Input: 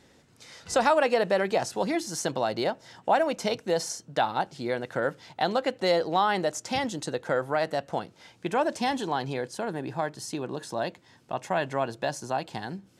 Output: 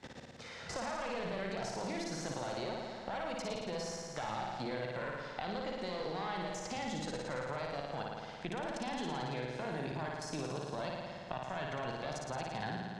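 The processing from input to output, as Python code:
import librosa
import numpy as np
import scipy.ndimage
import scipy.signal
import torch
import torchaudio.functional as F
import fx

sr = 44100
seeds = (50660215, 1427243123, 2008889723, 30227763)

y = fx.diode_clip(x, sr, knee_db=-28.0)
y = fx.peak_eq(y, sr, hz=320.0, db=-5.5, octaves=1.0)
y = fx.level_steps(y, sr, step_db=20)
y = fx.air_absorb(y, sr, metres=81.0)
y = fx.room_flutter(y, sr, wall_m=9.6, rt60_s=1.3)
y = fx.band_squash(y, sr, depth_pct=70)
y = y * librosa.db_to_amplitude(-1.0)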